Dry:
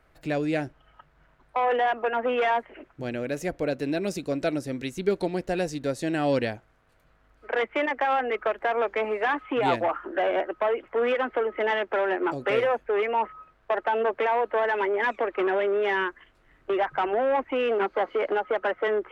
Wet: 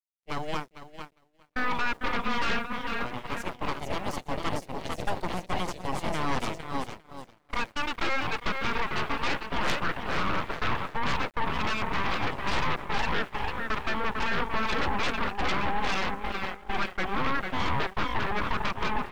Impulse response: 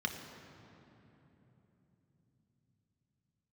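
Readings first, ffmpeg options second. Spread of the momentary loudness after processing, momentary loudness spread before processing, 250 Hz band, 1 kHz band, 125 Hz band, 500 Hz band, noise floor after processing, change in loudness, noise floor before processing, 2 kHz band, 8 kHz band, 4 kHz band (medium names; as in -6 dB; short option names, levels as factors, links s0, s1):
7 LU, 6 LU, -3.5 dB, -2.5 dB, +3.0 dB, -12.0 dB, -60 dBFS, -4.0 dB, -62 dBFS, -0.5 dB, no reading, +5.0 dB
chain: -filter_complex "[0:a]asplit=2[s0][s1];[s1]aecho=0:1:450|855|1220|1548|1843:0.631|0.398|0.251|0.158|0.1[s2];[s0][s2]amix=inputs=2:normalize=0,aeval=exprs='0.398*(cos(1*acos(clip(val(0)/0.398,-1,1)))-cos(1*PI/2))+0.178*(cos(3*acos(clip(val(0)/0.398,-1,1)))-cos(3*PI/2))+0.00355*(cos(5*acos(clip(val(0)/0.398,-1,1)))-cos(5*PI/2))+0.126*(cos(8*acos(clip(val(0)/0.398,-1,1)))-cos(8*PI/2))':c=same,aeval=exprs='val(0)*gte(abs(val(0)),0.00794)':c=same,agate=range=0.0224:threshold=0.0891:ratio=3:detection=peak,volume=0.447"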